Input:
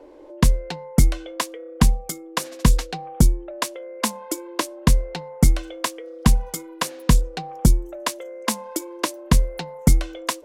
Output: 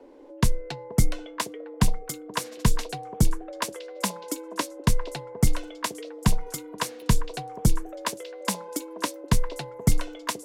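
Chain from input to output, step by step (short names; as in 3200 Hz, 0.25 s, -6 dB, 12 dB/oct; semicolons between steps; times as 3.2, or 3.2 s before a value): frequency shift -24 Hz; delay with a stepping band-pass 0.478 s, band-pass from 480 Hz, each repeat 1.4 oct, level -6 dB; gain -4 dB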